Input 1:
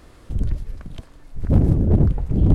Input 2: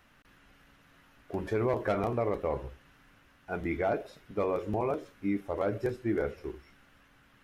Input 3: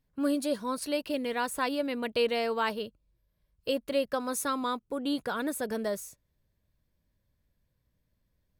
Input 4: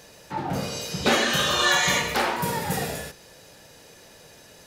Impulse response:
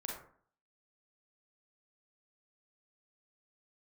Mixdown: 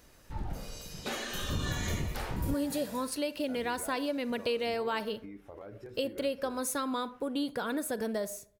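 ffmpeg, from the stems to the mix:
-filter_complex "[0:a]volume=0.178[s0];[1:a]alimiter=level_in=1.68:limit=0.0631:level=0:latency=1:release=90,volume=0.596,acompressor=threshold=0.01:ratio=2,volume=0.531[s1];[2:a]equalizer=f=1200:t=o:w=0.77:g=-3,adelay=2300,volume=1,asplit=2[s2][s3];[s3]volume=0.224[s4];[3:a]highshelf=f=9200:g=10.5,volume=0.158[s5];[4:a]atrim=start_sample=2205[s6];[s4][s6]afir=irnorm=-1:irlink=0[s7];[s0][s1][s2][s5][s7]amix=inputs=5:normalize=0,acompressor=threshold=0.0316:ratio=2.5"

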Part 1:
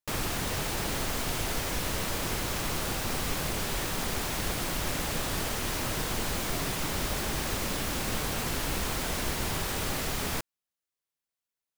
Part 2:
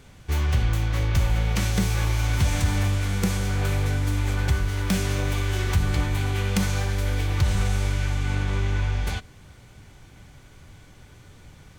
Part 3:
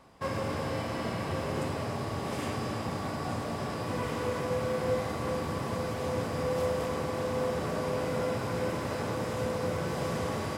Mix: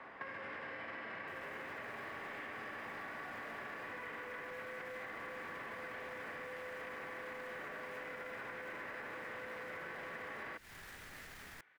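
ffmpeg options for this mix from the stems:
-filter_complex "[0:a]alimiter=level_in=1.58:limit=0.0631:level=0:latency=1:release=27,volume=0.631,adelay=1200,volume=0.112[s0];[1:a]highpass=f=680:p=1,volume=0.15[s1];[2:a]volume=1.41[s2];[s1][s2]amix=inputs=2:normalize=0,acrossover=split=250 3100:gain=0.178 1 0.0708[s3][s4][s5];[s3][s4][s5]amix=inputs=3:normalize=0,alimiter=level_in=1.33:limit=0.0631:level=0:latency=1:release=13,volume=0.75,volume=1[s6];[s0][s6]amix=inputs=2:normalize=0,acrossover=split=400|1700[s7][s8][s9];[s7]acompressor=threshold=0.00282:ratio=4[s10];[s8]acompressor=threshold=0.00447:ratio=4[s11];[s9]acompressor=threshold=0.00282:ratio=4[s12];[s10][s11][s12]amix=inputs=3:normalize=0,equalizer=f=1800:w=1.6:g=13.5,acompressor=threshold=0.00708:ratio=6"

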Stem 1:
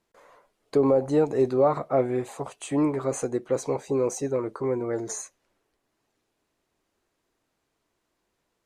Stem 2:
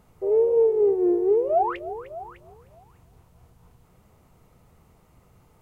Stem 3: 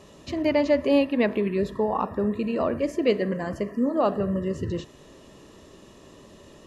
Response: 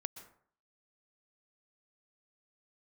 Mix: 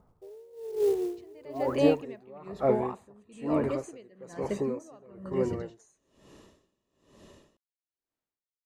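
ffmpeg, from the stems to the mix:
-filter_complex "[0:a]agate=range=0.2:threshold=0.00501:ratio=16:detection=peak,adelay=700,volume=0.668,asplit=2[s0][s1];[s1]volume=0.282[s2];[1:a]lowpass=f=1400:w=0.5412,lowpass=f=1400:w=1.3066,acrusher=bits=6:mode=log:mix=0:aa=0.000001,volume=0.631[s3];[2:a]adelay=900,volume=0.631[s4];[3:a]atrim=start_sample=2205[s5];[s2][s5]afir=irnorm=-1:irlink=0[s6];[s0][s3][s4][s6]amix=inputs=4:normalize=0,aeval=exprs='val(0)*pow(10,-28*(0.5-0.5*cos(2*PI*1.1*n/s))/20)':c=same"

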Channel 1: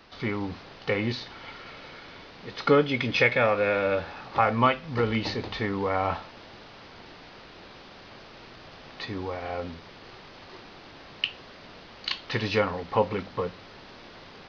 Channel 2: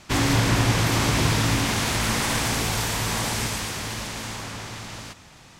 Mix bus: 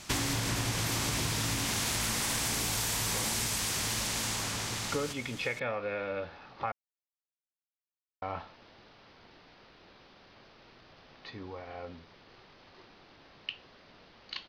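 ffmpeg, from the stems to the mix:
-filter_complex "[0:a]adelay=2250,volume=0.316,asplit=3[s0][s1][s2];[s0]atrim=end=6.72,asetpts=PTS-STARTPTS,afade=t=out:st=6.716:d=0.004:c=hsin[s3];[s1]atrim=start=6.72:end=8.22,asetpts=PTS-STARTPTS,volume=0[s4];[s2]atrim=start=8.22,asetpts=PTS-STARTPTS,afade=t=in:d=0.004:c=hsin[s5];[s3][s4][s5]concat=n=3:v=0:a=1[s6];[1:a]highshelf=f=3700:g=9.5,volume=0.75[s7];[s6][s7]amix=inputs=2:normalize=0,acompressor=threshold=0.0398:ratio=12"

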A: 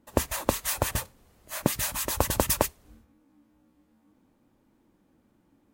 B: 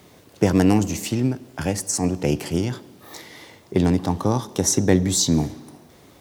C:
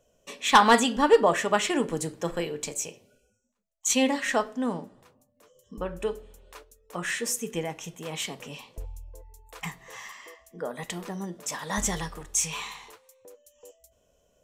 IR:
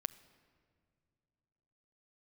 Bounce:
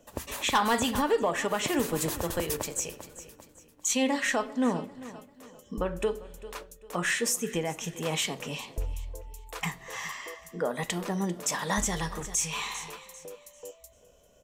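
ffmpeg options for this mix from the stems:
-filter_complex "[0:a]volume=0.266,asplit=3[s0][s1][s2];[s1]volume=0.596[s3];[s2]volume=0.2[s4];[2:a]volume=0.891,asplit=2[s5][s6];[s6]volume=0.1[s7];[3:a]atrim=start_sample=2205[s8];[s3][s8]afir=irnorm=-1:irlink=0[s9];[s4][s7]amix=inputs=2:normalize=0,aecho=0:1:395|790|1185|1580:1|0.31|0.0961|0.0298[s10];[s0][s5][s9][s10]amix=inputs=4:normalize=0,acontrast=79,alimiter=limit=0.133:level=0:latency=1:release=485"

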